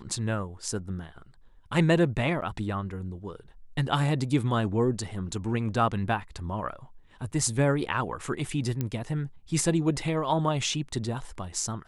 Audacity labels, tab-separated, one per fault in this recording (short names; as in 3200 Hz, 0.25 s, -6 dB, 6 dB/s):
2.410000	2.420000	gap 9.1 ms
8.810000	8.810000	pop -16 dBFS